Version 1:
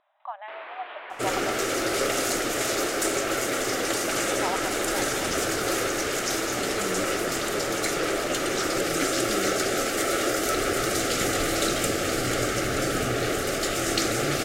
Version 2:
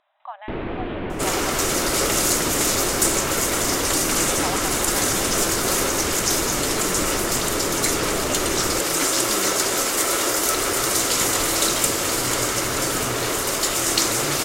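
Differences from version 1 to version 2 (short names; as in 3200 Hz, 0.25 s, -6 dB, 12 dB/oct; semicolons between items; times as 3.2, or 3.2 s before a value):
first sound: remove Bessel high-pass 1100 Hz, order 4; second sound: remove Butterworth band-stop 980 Hz, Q 2.6; master: add high shelf 3900 Hz +11.5 dB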